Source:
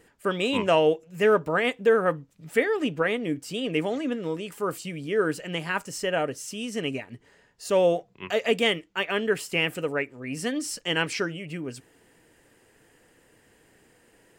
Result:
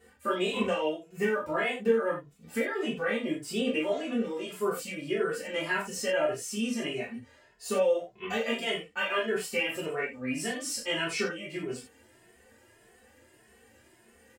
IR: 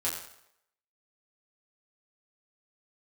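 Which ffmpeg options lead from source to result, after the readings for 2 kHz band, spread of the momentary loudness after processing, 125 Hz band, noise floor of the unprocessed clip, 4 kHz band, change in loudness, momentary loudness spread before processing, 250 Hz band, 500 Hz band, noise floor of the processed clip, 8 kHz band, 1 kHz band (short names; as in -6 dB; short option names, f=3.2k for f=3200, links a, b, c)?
-3.5 dB, 7 LU, -8.0 dB, -61 dBFS, -4.0 dB, -4.5 dB, 11 LU, -3.5 dB, -5.0 dB, -61 dBFS, -0.5 dB, -5.0 dB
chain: -filter_complex "[0:a]acompressor=threshold=-25dB:ratio=6[a];[1:a]atrim=start_sample=2205,atrim=end_sample=3969,asetrate=39249,aresample=44100[b];[a][b]afir=irnorm=-1:irlink=0,asplit=2[c][d];[d]adelay=2.3,afreqshift=1.7[e];[c][e]amix=inputs=2:normalize=1,volume=-2.5dB"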